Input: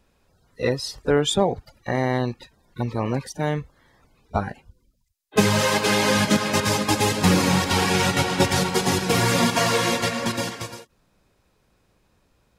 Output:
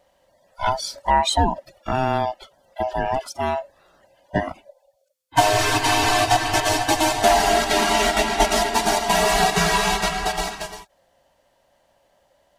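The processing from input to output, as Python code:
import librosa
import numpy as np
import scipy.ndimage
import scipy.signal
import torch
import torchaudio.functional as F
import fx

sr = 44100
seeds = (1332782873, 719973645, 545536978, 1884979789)

y = fx.band_swap(x, sr, width_hz=500)
y = fx.highpass(y, sr, hz=150.0, slope=6, at=(3.19, 3.6))
y = y * librosa.db_to_amplitude(1.5)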